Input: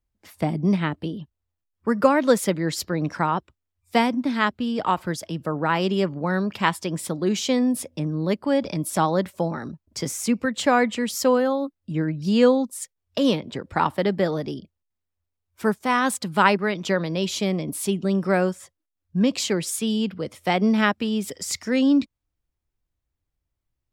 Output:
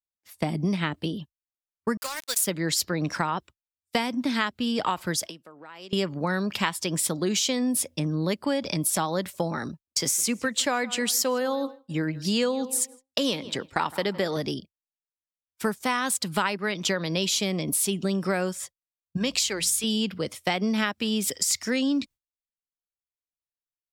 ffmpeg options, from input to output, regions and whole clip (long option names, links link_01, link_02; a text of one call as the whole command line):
ffmpeg -i in.wav -filter_complex "[0:a]asettb=1/sr,asplit=3[link_01][link_02][link_03];[link_01]atrim=end=1.974[link_04];[link_02]atrim=start=1.97:end=2.47,asetpts=PTS-STARTPTS,afade=type=in:duration=0.004:curve=qsin,afade=type=out:start_time=0.496:duration=0.004:curve=qsin,aderivative,acrusher=bits=5:mix=0:aa=0.5[link_05];[link_03]atrim=start=2.466[link_06];[link_04][link_05]acrossfade=duration=0.004:curve1=hsin:curve2=qsin[link_07];[link_07][link_06]acrossfade=duration=0.004:curve1=qsin:curve2=hsin,asettb=1/sr,asplit=3[link_08][link_09][link_10];[link_08]atrim=end=5.264[link_11];[link_09]atrim=start=5.26:end=5.93,asetpts=PTS-STARTPTS,afade=type=in:duration=0.004:curve=qsin,afade=type=out:start_time=0.666:duration=0.004:curve=qsin,highpass=250,acompressor=threshold=-35dB:ratio=16:attack=3.2:release=140:knee=1:detection=peak[link_12];[link_10]atrim=start=5.926[link_13];[link_11][link_12]acrossfade=duration=0.004:curve1=hsin:curve2=qsin[link_14];[link_14][link_13]acrossfade=duration=0.004:curve1=qsin:curve2=hsin,asettb=1/sr,asplit=3[link_15][link_16][link_17];[link_15]atrim=end=9.874[link_18];[link_16]atrim=start=9.87:end=14.37,asetpts=PTS-STARTPTS,afade=type=in:duration=0.004:curve=qsin,afade=type=out:start_time=4.496:duration=0.004:curve=qsin,bass=frequency=250:gain=-4,treble=frequency=4000:gain=1,asplit=2[link_19][link_20];[link_20]adelay=161,lowpass=frequency=3000:poles=1,volume=-20dB,asplit=2[link_21][link_22];[link_22]adelay=161,lowpass=frequency=3000:poles=1,volume=0.35,asplit=2[link_23][link_24];[link_24]adelay=161,lowpass=frequency=3000:poles=1,volume=0.35[link_25];[link_19][link_21][link_23][link_25]amix=inputs=4:normalize=0,atrim=end_sample=198450[link_26];[link_17]atrim=start=14.366[link_27];[link_18][link_26]acrossfade=duration=0.004:curve1=hsin:curve2=qsin[link_28];[link_28][link_27]acrossfade=duration=0.004:curve1=qsin:curve2=hsin,asettb=1/sr,asplit=3[link_29][link_30][link_31];[link_29]atrim=end=19.174[link_32];[link_30]atrim=start=19.17:end=19.84,asetpts=PTS-STARTPTS,afade=type=in:duration=0.004:curve=qsin,afade=type=out:start_time=0.666:duration=0.004:curve=qsin,lowshelf=frequency=360:gain=-10.5,bandreject=frequency=60:width_type=h:width=6,bandreject=frequency=120:width_type=h:width=6,bandreject=frequency=180:width_type=h:width=6,aeval=exprs='val(0)+0.00251*(sin(2*PI*60*n/s)+sin(2*PI*2*60*n/s)/2+sin(2*PI*3*60*n/s)/3+sin(2*PI*4*60*n/s)/4+sin(2*PI*5*60*n/s)/5)':channel_layout=same[link_33];[link_31]atrim=start=19.836[link_34];[link_32][link_33]acrossfade=duration=0.004:curve1=hsin:curve2=qsin[link_35];[link_35][link_34]acrossfade=duration=0.004:curve1=qsin:curve2=hsin,highshelf=frequency=2200:gain=11,agate=range=-33dB:threshold=-31dB:ratio=3:detection=peak,acompressor=threshold=-22dB:ratio=6" out.wav